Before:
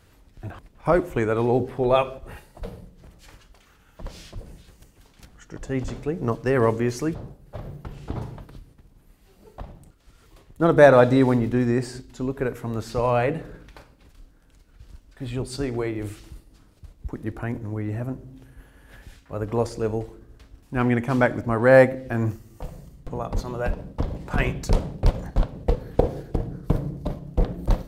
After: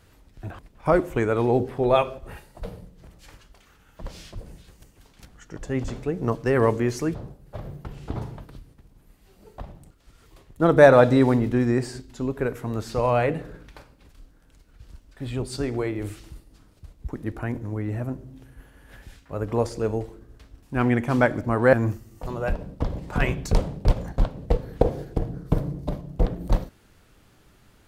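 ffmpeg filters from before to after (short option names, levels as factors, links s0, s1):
-filter_complex "[0:a]asplit=3[s0][s1][s2];[s0]atrim=end=21.732[s3];[s1]atrim=start=22.118:end=22.662[s4];[s2]atrim=start=23.448[s5];[s3][s4]acrossfade=d=0.004:c1=hsin:c2=hsin[s6];[s6][s5]acrossfade=d=0.004:c1=hsin:c2=hsin"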